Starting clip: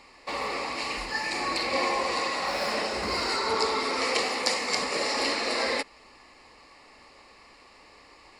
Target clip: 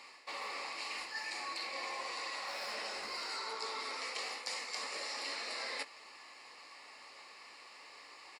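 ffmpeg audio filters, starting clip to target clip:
-filter_complex "[0:a]highpass=f=1.1k:p=1,areverse,acompressor=threshold=-42dB:ratio=4,areverse,asplit=2[a][b];[b]adelay=18,volume=-11dB[c];[a][c]amix=inputs=2:normalize=0,volume=1dB"

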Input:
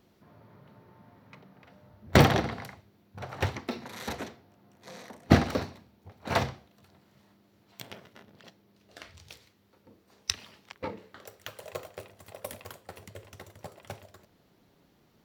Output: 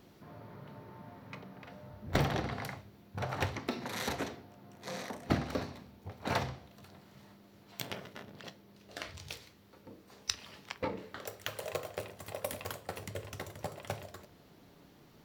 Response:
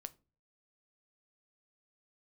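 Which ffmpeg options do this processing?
-filter_complex "[0:a]acompressor=threshold=-38dB:ratio=3[a];[1:a]atrim=start_sample=2205[b];[a][b]afir=irnorm=-1:irlink=0,volume=10dB"

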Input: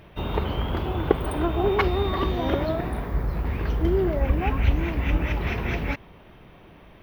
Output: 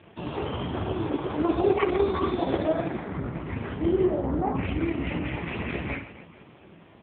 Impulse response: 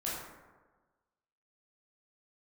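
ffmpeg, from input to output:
-filter_complex "[0:a]asettb=1/sr,asplit=3[a][b][c];[a]atrim=end=2.554[d];[b]atrim=start=2.55:end=3.38,asetpts=PTS-STARTPTS,afade=t=in:d=0.004:c=qsin,afade=t=out:st=0.826:d=0.004:c=qsin,bandreject=f=910:w=21[e];[c]atrim=start=3.376[f];[d][e]acrossfade=d=0.004:c1=hsin:c2=qsin[g];[g][f]acrossfade=d=0.004:c1=qsin:c2=hsin,asettb=1/sr,asplit=3[h][i][j];[h]atrim=end=4.104[k];[i]atrim=start=4.1:end=4.55,asetpts=PTS-STARTPTS,afade=t=in:d=0.004:c=qsin,afade=t=out:st=0.446:d=0.004:c=qsin,lowpass=f=1.3k:w=0.5412,lowpass=f=1.3k:w=1.3066[l];[j]atrim=start=4.546[m];[k][l]acrossfade=d=0.004:c1=hsin:c2=qsin[n];[n][m]acrossfade=d=0.004:c1=qsin:c2=hsin,flanger=delay=3.2:depth=9:regen=-84:speed=0.96:shape=triangular,aecho=1:1:30|78|154.8|277.7|474.3:0.631|0.398|0.251|0.158|0.1,asplit=2[o][p];[1:a]atrim=start_sample=2205,asetrate=79380,aresample=44100[q];[p][q]afir=irnorm=-1:irlink=0,volume=-20dB[r];[o][r]amix=inputs=2:normalize=0,volume=4.5dB" -ar 8000 -c:a libopencore_amrnb -b:a 4750

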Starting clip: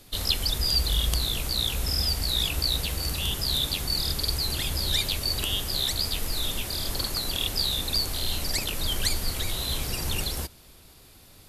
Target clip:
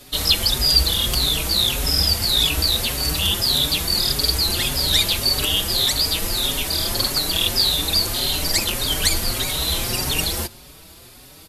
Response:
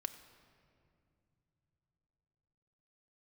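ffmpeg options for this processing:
-filter_complex "[0:a]lowshelf=f=85:g=-8.5,aeval=exprs='0.596*sin(PI/2*1.58*val(0)/0.596)':c=same,asplit=2[a][b];[1:a]atrim=start_sample=2205[c];[b][c]afir=irnorm=-1:irlink=0,volume=-10.5dB[d];[a][d]amix=inputs=2:normalize=0,asplit=2[e][f];[f]adelay=5.1,afreqshift=1.7[g];[e][g]amix=inputs=2:normalize=1,volume=2dB"

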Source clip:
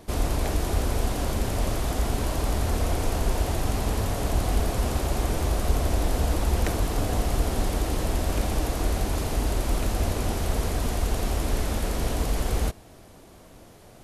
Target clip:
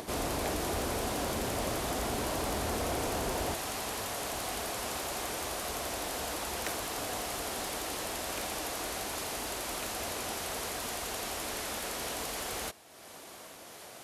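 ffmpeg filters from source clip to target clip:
-af "acompressor=mode=upward:threshold=-32dB:ratio=2.5,asetnsamples=n=441:p=0,asendcmd='3.54 highpass f 1100',highpass=f=300:p=1,asoftclip=type=tanh:threshold=-24dB"

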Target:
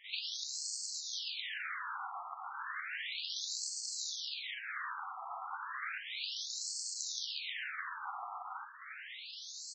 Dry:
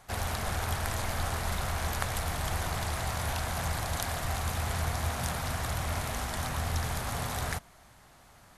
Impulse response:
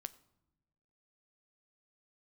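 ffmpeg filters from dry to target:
-filter_complex "[0:a]highpass=100,tiltshelf=f=970:g=-10,alimiter=limit=-16.5dB:level=0:latency=1:release=278,flanger=delay=7.9:depth=7.8:regen=-46:speed=1.5:shape=sinusoidal,acompressor=threshold=-47dB:ratio=16,atempo=0.88,aecho=1:1:109:0.266,asplit=2[a][b];[1:a]atrim=start_sample=2205,adelay=43[c];[b][c]afir=irnorm=-1:irlink=0,volume=16dB[d];[a][d]amix=inputs=2:normalize=0,afftfilt=real='re*between(b*sr/1024,950*pow(6000/950,0.5+0.5*sin(2*PI*0.33*pts/sr))/1.41,950*pow(6000/950,0.5+0.5*sin(2*PI*0.33*pts/sr))*1.41)':imag='im*between(b*sr/1024,950*pow(6000/950,0.5+0.5*sin(2*PI*0.33*pts/sr))/1.41,950*pow(6000/950,0.5+0.5*sin(2*PI*0.33*pts/sr))*1.41)':win_size=1024:overlap=0.75,volume=4dB"

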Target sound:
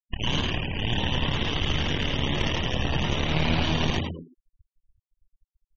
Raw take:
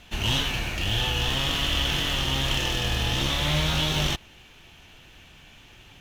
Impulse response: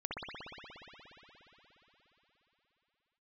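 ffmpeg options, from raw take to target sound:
-filter_complex "[0:a]asplit=2[a][b];[b]acrusher=bits=3:mix=0:aa=0.000001,volume=-8dB[c];[a][c]amix=inputs=2:normalize=0,highshelf=f=8.2k:g=-11,adynamicsmooth=sensitivity=7:basefreq=5.7k,superequalizer=10b=0.631:13b=0.447,aeval=exprs='max(val(0),0)':c=same,asetrate=45938,aresample=44100,acrusher=bits=7:mode=log:mix=0:aa=0.000001,bandreject=f=132.9:t=h:w=4,bandreject=f=265.8:t=h:w=4,bandreject=f=398.7:t=h:w=4,bandreject=f=531.6:t=h:w=4,bandreject=f=664.5:t=h:w=4,bandreject=f=797.4:t=h:w=4,bandreject=f=930.3:t=h:w=4,bandreject=f=1.0632k:t=h:w=4,bandreject=f=1.1961k:t=h:w=4,bandreject=f=1.329k:t=h:w=4,bandreject=f=1.4619k:t=h:w=4,asplit=2[d][e];[e]asplit=5[f][g][h][i][j];[f]adelay=102,afreqshift=83,volume=-3.5dB[k];[g]adelay=204,afreqshift=166,volume=-11.7dB[l];[h]adelay=306,afreqshift=249,volume=-19.9dB[m];[i]adelay=408,afreqshift=332,volume=-28dB[n];[j]adelay=510,afreqshift=415,volume=-36.2dB[o];[k][l][m][n][o]amix=inputs=5:normalize=0[p];[d][p]amix=inputs=2:normalize=0,afftfilt=real='re*gte(hypot(re,im),0.0282)':imag='im*gte(hypot(re,im),0.0282)':win_size=1024:overlap=0.75"

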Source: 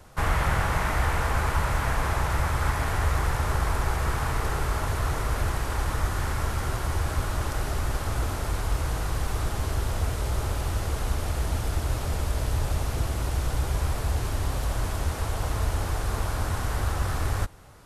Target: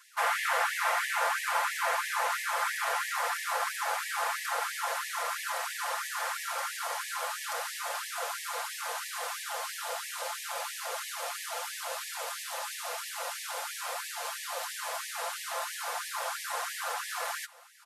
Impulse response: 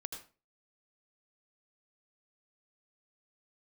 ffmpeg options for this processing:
-af "aecho=1:1:5.8:0.65,afftfilt=real='re*gte(b*sr/1024,430*pow(1700/430,0.5+0.5*sin(2*PI*3*pts/sr)))':imag='im*gte(b*sr/1024,430*pow(1700/430,0.5+0.5*sin(2*PI*3*pts/sr)))':win_size=1024:overlap=0.75"

